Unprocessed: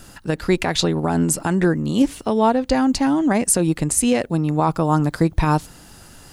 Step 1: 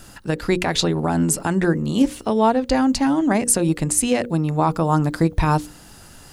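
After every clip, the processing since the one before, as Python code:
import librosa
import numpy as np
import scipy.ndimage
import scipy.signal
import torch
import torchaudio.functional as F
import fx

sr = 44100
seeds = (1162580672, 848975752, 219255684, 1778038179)

y = fx.hum_notches(x, sr, base_hz=60, count=9)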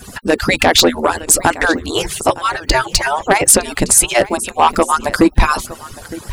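y = fx.hpss_only(x, sr, part='percussive')
y = y + 10.0 ** (-20.0 / 20.0) * np.pad(y, (int(912 * sr / 1000.0), 0))[:len(y)]
y = fx.fold_sine(y, sr, drive_db=8, ceiling_db=-5.0)
y = y * 10.0 ** (2.0 / 20.0)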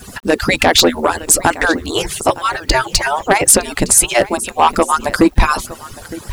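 y = fx.quant_dither(x, sr, seeds[0], bits=8, dither='none')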